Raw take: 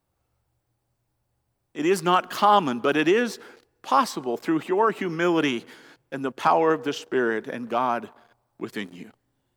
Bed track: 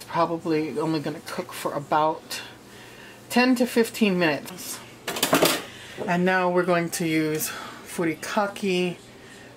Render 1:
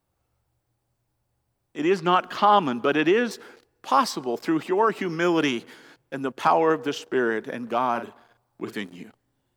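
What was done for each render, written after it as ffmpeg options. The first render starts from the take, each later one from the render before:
-filter_complex "[0:a]asettb=1/sr,asplit=3[a][b][c];[a]atrim=end=1.804[d];[b]atrim=start=1.8:end=3.31,asetpts=PTS-STARTPTS,afade=t=in:d=0.004:c=qsin,afade=t=out:st=1.506:d=0.004:c=qsin,acrossover=split=5100[e][f];[f]acompressor=threshold=-56dB:ratio=4:attack=1:release=60[g];[e][g]amix=inputs=2:normalize=0[h];[c]atrim=start=3.306[i];[d][h]acrossfade=d=0.004:c1=hsin:c2=qsin[j];[j][i]acrossfade=d=0.004:c1=qsin:c2=hsin,asettb=1/sr,asplit=3[k][l][m];[k]atrim=end=4.044[n];[l]atrim=start=4.04:end=5.57,asetpts=PTS-STARTPTS,afade=t=in:d=0.004:c=qsin,afade=t=out:st=1.526:d=0.004:c=qsin,equalizer=f=5k:t=o:w=0.5:g=5.5[o];[m]atrim=start=5.566[p];[n][o]acrossfade=d=0.004:c1=hsin:c2=qsin[q];[q][p]acrossfade=d=0.004:c1=qsin:c2=hsin,asettb=1/sr,asplit=3[r][s][t];[r]atrim=end=7.914[u];[s]atrim=start=7.91:end=8.74,asetpts=PTS-STARTPTS,afade=t=in:d=0.004:c=qsin,afade=t=out:st=0.826:d=0.004:c=qsin,asplit=2[v][w];[w]adelay=43,volume=-8dB[x];[v][x]amix=inputs=2:normalize=0,atrim=end_sample=36603[y];[t]atrim=start=8.736[z];[u][y]acrossfade=d=0.004:c1=hsin:c2=qsin[aa];[aa][z]acrossfade=d=0.004:c1=qsin:c2=hsin"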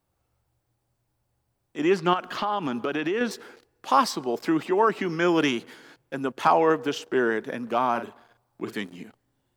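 -filter_complex "[0:a]asettb=1/sr,asplit=3[a][b][c];[a]atrim=end=2.134[d];[b]atrim=start=2.13:end=3.21,asetpts=PTS-STARTPTS,afade=t=in:d=0.004:c=qsin,afade=t=out:st=1.076:d=0.004:c=qsin,acompressor=threshold=-23dB:ratio=5:attack=3.2:release=140:knee=1:detection=peak[e];[c]atrim=start=3.206[f];[d][e]acrossfade=d=0.004:c1=hsin:c2=qsin[g];[g][f]acrossfade=d=0.004:c1=qsin:c2=hsin,asettb=1/sr,asplit=3[h][i][j];[h]atrim=end=4.654[k];[i]atrim=start=4.65:end=5.28,asetpts=PTS-STARTPTS,afade=t=in:d=0.004:c=qsin,afade=t=out:st=0.626:d=0.004:c=qsin,acrossover=split=7000[l][m];[m]acompressor=threshold=-59dB:ratio=4:attack=1:release=60[n];[l][n]amix=inputs=2:normalize=0[o];[j]atrim=start=5.276[p];[k][o]acrossfade=d=0.004:c1=hsin:c2=qsin[q];[q][p]acrossfade=d=0.004:c1=qsin:c2=hsin"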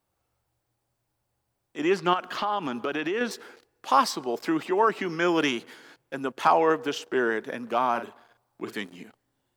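-af "lowshelf=f=260:g=-6.5"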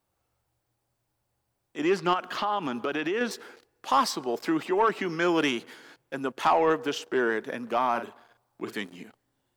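-af "asoftclip=type=tanh:threshold=-13dB"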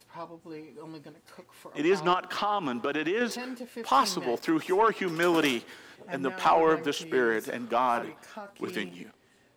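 -filter_complex "[1:a]volume=-18.5dB[a];[0:a][a]amix=inputs=2:normalize=0"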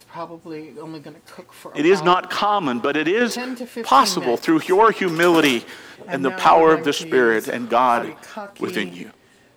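-af "volume=9.5dB"

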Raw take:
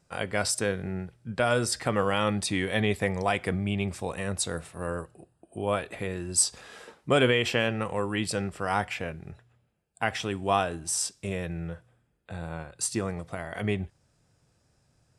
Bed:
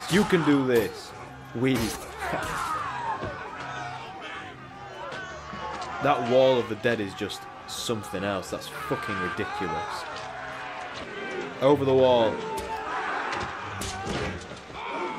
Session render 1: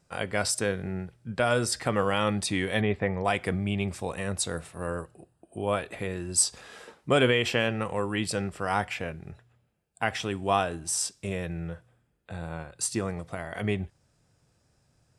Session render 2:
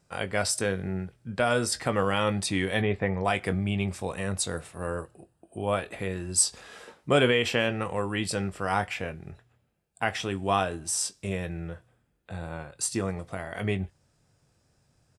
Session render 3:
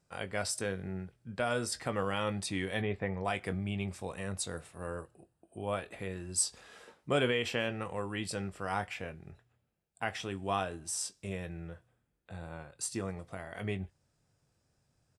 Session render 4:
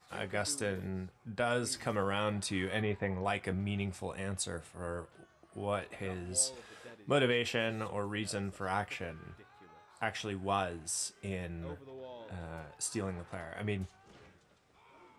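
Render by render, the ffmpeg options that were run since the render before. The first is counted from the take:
-filter_complex "[0:a]asettb=1/sr,asplit=3[a][b][c];[a]atrim=end=2.814[d];[b]atrim=start=2.81:end=3.25,asetpts=PTS-STARTPTS,afade=t=in:d=0.004:c=qsin,afade=t=out:st=0.436:d=0.004:c=qsin,lowpass=2.2k[e];[c]atrim=start=3.246[f];[d][e]acrossfade=d=0.004:c1=hsin:c2=qsin[g];[g][f]acrossfade=d=0.004:c1=qsin:c2=hsin"
-filter_complex "[0:a]asplit=2[a][b];[b]adelay=21,volume=-12dB[c];[a][c]amix=inputs=2:normalize=0"
-af "volume=-7.5dB"
-filter_complex "[1:a]volume=-28dB[a];[0:a][a]amix=inputs=2:normalize=0"

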